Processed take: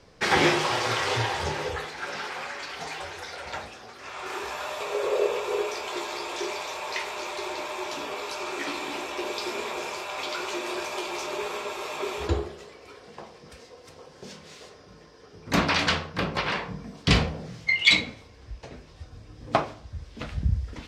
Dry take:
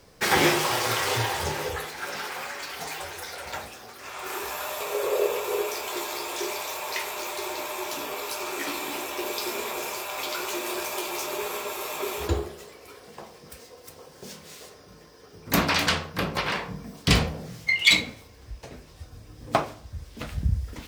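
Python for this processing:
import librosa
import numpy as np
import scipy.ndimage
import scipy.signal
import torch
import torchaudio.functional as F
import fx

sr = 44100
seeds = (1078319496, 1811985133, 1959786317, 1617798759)

y = scipy.signal.sosfilt(scipy.signal.butter(2, 5600.0, 'lowpass', fs=sr, output='sos'), x)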